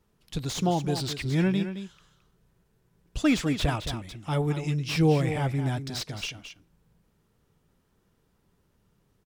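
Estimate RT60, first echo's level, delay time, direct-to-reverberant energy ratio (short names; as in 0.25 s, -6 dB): none, -10.0 dB, 0.218 s, none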